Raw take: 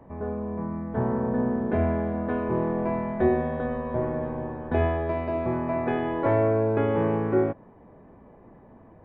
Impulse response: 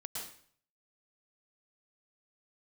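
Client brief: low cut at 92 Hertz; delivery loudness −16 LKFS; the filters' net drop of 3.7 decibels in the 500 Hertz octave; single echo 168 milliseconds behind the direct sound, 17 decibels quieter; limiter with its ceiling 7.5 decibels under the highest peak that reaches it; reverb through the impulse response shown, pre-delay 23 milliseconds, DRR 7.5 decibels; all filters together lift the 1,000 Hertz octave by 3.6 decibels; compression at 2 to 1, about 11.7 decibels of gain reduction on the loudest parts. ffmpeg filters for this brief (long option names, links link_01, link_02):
-filter_complex "[0:a]highpass=92,equalizer=frequency=500:width_type=o:gain=-7.5,equalizer=frequency=1000:width_type=o:gain=7,acompressor=threshold=-42dB:ratio=2,alimiter=level_in=7.5dB:limit=-24dB:level=0:latency=1,volume=-7.5dB,aecho=1:1:168:0.141,asplit=2[link_01][link_02];[1:a]atrim=start_sample=2205,adelay=23[link_03];[link_02][link_03]afir=irnorm=-1:irlink=0,volume=-7dB[link_04];[link_01][link_04]amix=inputs=2:normalize=0,volume=23.5dB"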